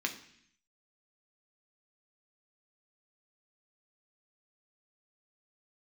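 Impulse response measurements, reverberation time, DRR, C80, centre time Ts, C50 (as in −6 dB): 0.65 s, 2.5 dB, 14.5 dB, 13 ms, 11.5 dB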